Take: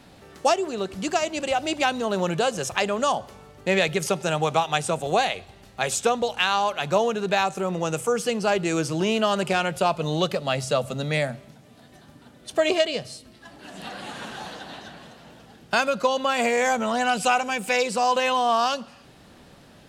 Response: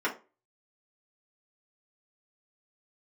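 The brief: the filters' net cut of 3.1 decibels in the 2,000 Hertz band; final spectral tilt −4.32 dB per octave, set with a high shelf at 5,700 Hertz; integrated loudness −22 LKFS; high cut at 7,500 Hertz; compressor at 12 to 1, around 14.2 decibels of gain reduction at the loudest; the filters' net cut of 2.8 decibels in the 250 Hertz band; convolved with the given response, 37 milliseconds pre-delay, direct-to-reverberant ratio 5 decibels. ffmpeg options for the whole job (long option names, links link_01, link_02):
-filter_complex "[0:a]lowpass=7500,equalizer=frequency=250:width_type=o:gain=-4,equalizer=frequency=2000:width_type=o:gain=-3.5,highshelf=frequency=5700:gain=-5,acompressor=threshold=-31dB:ratio=12,asplit=2[link_01][link_02];[1:a]atrim=start_sample=2205,adelay=37[link_03];[link_02][link_03]afir=irnorm=-1:irlink=0,volume=-15dB[link_04];[link_01][link_04]amix=inputs=2:normalize=0,volume=13.5dB"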